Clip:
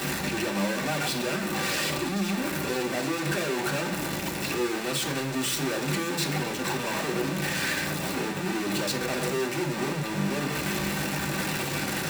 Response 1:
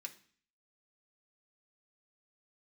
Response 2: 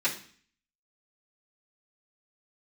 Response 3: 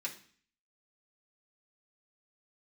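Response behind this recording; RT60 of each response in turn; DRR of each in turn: 3; 0.45, 0.45, 0.45 seconds; 1.5, −11.5, −5.0 decibels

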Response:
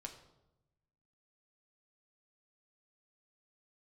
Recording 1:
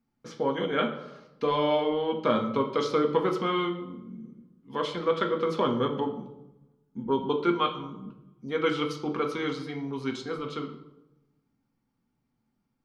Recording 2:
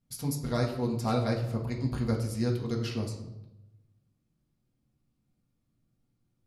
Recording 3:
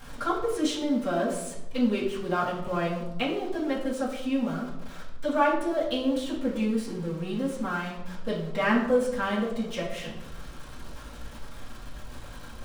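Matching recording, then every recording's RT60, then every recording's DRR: 1; 0.95, 0.95, 0.90 seconds; 2.5, −2.0, −9.0 decibels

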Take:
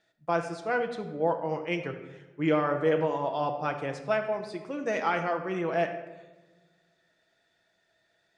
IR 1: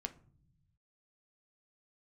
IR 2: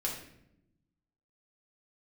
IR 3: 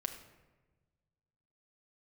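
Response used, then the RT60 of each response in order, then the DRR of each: 3; 0.50, 0.80, 1.2 seconds; 6.5, −3.5, 4.5 decibels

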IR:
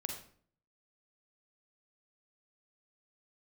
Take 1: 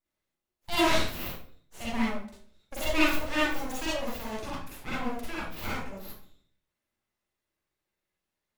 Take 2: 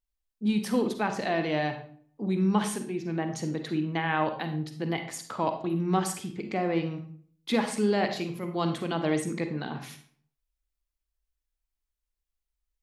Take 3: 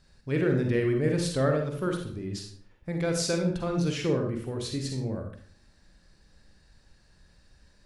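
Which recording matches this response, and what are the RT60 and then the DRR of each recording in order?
3; 0.50, 0.50, 0.50 seconds; −7.5, 6.5, 2.5 decibels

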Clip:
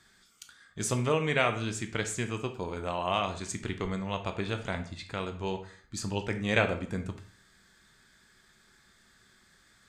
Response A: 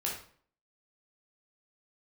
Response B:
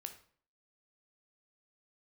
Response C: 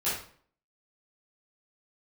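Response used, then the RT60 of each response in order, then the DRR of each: B; 0.50, 0.50, 0.50 seconds; −3.5, 6.5, −12.5 decibels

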